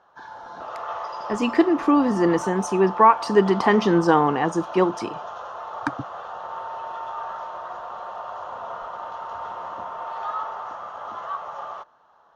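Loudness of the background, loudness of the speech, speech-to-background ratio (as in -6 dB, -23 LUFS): -33.0 LUFS, -20.0 LUFS, 13.0 dB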